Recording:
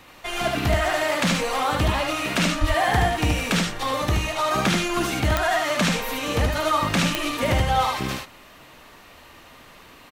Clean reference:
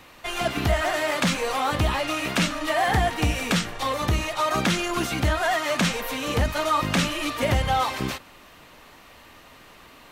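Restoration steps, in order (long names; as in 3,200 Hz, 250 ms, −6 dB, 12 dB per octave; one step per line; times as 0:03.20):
click removal
0:02.60–0:02.72: high-pass filter 140 Hz 24 dB per octave
echo removal 75 ms −3.5 dB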